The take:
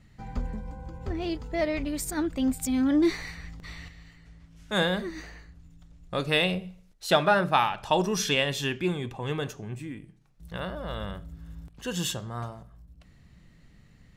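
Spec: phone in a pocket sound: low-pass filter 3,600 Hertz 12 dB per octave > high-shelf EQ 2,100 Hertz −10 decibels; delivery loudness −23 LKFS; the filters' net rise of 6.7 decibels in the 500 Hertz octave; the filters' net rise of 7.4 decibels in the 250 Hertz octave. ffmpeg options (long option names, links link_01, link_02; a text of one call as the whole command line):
ffmpeg -i in.wav -af "lowpass=3600,equalizer=frequency=250:width_type=o:gain=7,equalizer=frequency=500:width_type=o:gain=7.5,highshelf=frequency=2100:gain=-10,volume=0.5dB" out.wav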